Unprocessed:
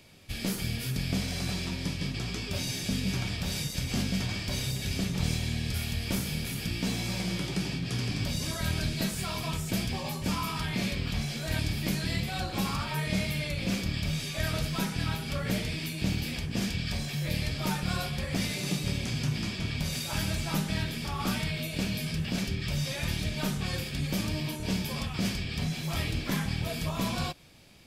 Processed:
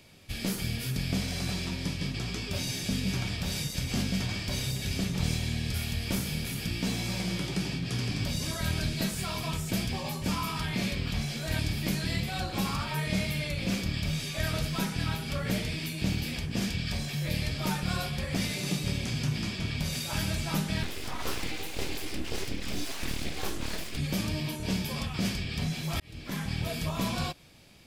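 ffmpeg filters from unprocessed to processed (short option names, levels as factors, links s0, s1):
-filter_complex "[0:a]asettb=1/sr,asplit=3[s0][s1][s2];[s0]atrim=end=20.834[s3];[s1]atrim=start=20.83:end=23.97,asetpts=PTS-STARTPTS,afade=t=in:d=0.004:c=qsin,afade=t=out:st=3.136:d=0.004:c=qsin,aeval=exprs='abs(val(0))':c=same[s4];[s2]atrim=start=23.966[s5];[s3][s4]acrossfade=d=0.004:c1=hsin:c2=qsin[s6];[s6][s5]acrossfade=d=0.004:c1=qsin:c2=hsin,asplit=2[s7][s8];[s7]atrim=end=26,asetpts=PTS-STARTPTS,afade=t=out:st=25.996:d=0.004:c=hsin[s9];[s8]atrim=start=26,asetpts=PTS-STARTPTS,afade=t=in:d=0.6[s10];[s9][s10]concat=n=2:v=0:a=1"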